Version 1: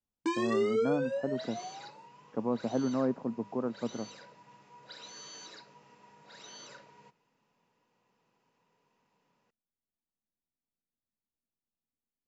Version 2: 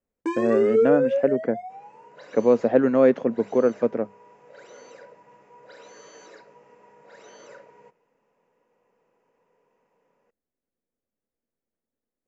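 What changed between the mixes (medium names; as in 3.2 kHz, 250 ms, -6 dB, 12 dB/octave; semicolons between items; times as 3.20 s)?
speech: remove four-pole ladder low-pass 1.3 kHz, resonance 30%; second sound: entry +0.80 s; master: add graphic EQ 125/500/2000/4000 Hz -3/+12/+5/-11 dB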